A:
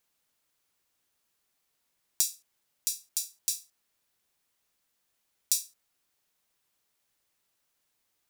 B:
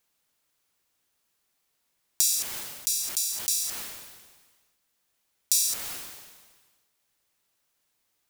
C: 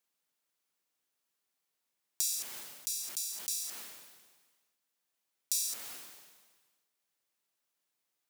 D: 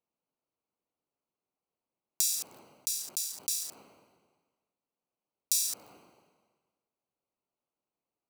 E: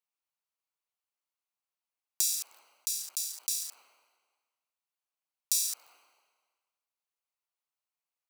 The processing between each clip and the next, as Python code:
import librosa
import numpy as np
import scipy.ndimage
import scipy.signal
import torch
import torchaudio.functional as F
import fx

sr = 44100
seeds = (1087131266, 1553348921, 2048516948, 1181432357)

y1 = fx.sustainer(x, sr, db_per_s=40.0)
y1 = y1 * 10.0 ** (2.0 / 20.0)
y2 = scipy.signal.sosfilt(scipy.signal.butter(2, 160.0, 'highpass', fs=sr, output='sos'), y1)
y2 = y2 * 10.0 ** (-9.0 / 20.0)
y3 = fx.wiener(y2, sr, points=25)
y3 = y3 * 10.0 ** (4.5 / 20.0)
y4 = scipy.signal.sosfilt(scipy.signal.butter(2, 1200.0, 'highpass', fs=sr, output='sos'), y3)